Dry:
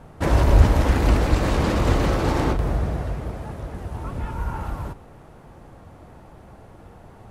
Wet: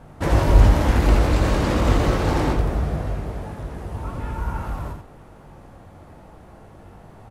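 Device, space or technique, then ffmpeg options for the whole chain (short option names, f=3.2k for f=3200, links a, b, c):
slapback doubling: -filter_complex "[0:a]asplit=3[a][b][c];[b]adelay=20,volume=-7.5dB[d];[c]adelay=84,volume=-5dB[e];[a][d][e]amix=inputs=3:normalize=0,volume=-1dB"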